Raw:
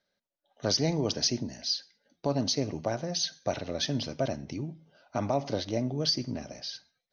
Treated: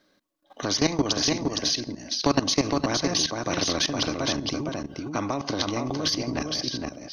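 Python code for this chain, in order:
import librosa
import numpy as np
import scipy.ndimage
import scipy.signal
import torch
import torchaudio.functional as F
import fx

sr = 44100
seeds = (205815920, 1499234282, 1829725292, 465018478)

y = fx.transient(x, sr, attack_db=4, sustain_db=-3)
y = fx.small_body(y, sr, hz=(300.0, 1100.0), ring_ms=65, db=17)
y = fx.level_steps(y, sr, step_db=17)
y = y + 10.0 ** (-6.5 / 20.0) * np.pad(y, (int(463 * sr / 1000.0), 0))[:len(y)]
y = fx.spectral_comp(y, sr, ratio=2.0)
y = y * librosa.db_to_amplitude(4.0)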